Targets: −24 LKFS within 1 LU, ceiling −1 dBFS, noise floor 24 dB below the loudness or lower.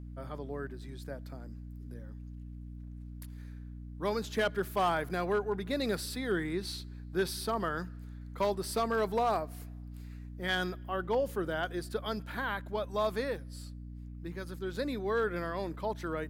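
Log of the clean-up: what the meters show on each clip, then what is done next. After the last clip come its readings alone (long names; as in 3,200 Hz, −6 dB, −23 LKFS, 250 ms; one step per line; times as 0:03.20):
share of clipped samples 0.4%; peaks flattened at −22.0 dBFS; mains hum 60 Hz; hum harmonics up to 300 Hz; level of the hum −42 dBFS; integrated loudness −34.0 LKFS; sample peak −22.0 dBFS; target loudness −24.0 LKFS
→ clipped peaks rebuilt −22 dBFS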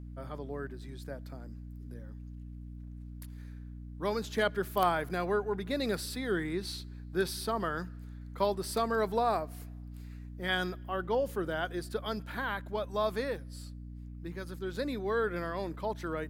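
share of clipped samples 0.0%; mains hum 60 Hz; hum harmonics up to 300 Hz; level of the hum −42 dBFS
→ mains-hum notches 60/120/180/240/300 Hz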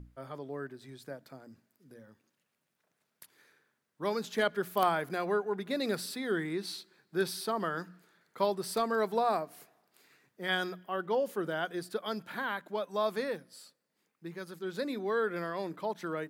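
mains hum none found; integrated loudness −34.0 LKFS; sample peak −13.0 dBFS; target loudness −24.0 LKFS
→ level +10 dB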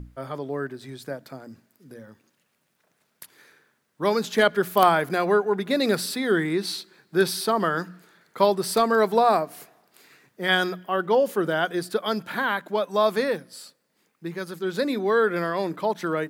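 integrated loudness −24.0 LKFS; sample peak −3.0 dBFS; background noise floor −72 dBFS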